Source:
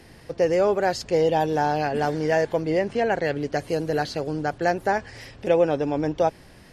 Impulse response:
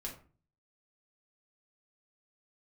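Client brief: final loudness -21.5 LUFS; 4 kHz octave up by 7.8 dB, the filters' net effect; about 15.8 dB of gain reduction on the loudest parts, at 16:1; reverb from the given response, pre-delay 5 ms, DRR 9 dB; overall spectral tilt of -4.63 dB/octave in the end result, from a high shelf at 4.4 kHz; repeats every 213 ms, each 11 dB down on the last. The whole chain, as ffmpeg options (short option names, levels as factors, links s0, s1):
-filter_complex "[0:a]equalizer=f=4000:t=o:g=6.5,highshelf=f=4400:g=6,acompressor=threshold=0.0316:ratio=16,aecho=1:1:213|426|639:0.282|0.0789|0.0221,asplit=2[s0][s1];[1:a]atrim=start_sample=2205,adelay=5[s2];[s1][s2]afir=irnorm=-1:irlink=0,volume=0.422[s3];[s0][s3]amix=inputs=2:normalize=0,volume=4.22"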